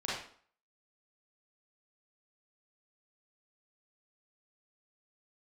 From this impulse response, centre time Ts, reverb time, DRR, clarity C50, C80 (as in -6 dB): 60 ms, 0.50 s, -8.5 dB, 0.0 dB, 5.5 dB